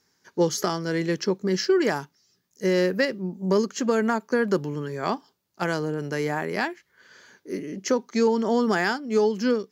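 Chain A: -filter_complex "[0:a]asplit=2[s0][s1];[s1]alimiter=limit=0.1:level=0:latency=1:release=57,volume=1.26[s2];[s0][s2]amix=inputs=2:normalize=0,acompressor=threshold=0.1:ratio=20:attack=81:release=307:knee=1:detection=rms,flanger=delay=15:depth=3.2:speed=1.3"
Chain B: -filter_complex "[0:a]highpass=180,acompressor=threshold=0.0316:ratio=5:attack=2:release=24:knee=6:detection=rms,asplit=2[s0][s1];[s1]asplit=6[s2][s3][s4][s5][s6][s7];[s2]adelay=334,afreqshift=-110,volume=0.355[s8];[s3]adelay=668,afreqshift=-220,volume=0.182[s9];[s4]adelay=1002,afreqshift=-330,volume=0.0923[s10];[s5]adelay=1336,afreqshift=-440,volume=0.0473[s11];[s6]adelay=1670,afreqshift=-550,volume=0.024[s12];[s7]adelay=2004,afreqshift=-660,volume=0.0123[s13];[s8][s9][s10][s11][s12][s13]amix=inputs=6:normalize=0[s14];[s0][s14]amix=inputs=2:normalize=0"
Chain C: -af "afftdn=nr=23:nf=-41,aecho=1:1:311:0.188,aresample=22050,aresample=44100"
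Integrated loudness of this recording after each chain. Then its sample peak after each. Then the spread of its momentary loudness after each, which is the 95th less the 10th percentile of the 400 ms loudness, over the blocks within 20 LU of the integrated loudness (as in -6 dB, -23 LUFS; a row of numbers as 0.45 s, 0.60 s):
-27.0 LUFS, -34.0 LUFS, -25.0 LUFS; -9.0 dBFS, -19.5 dBFS, -9.5 dBFS; 6 LU, 8 LU, 11 LU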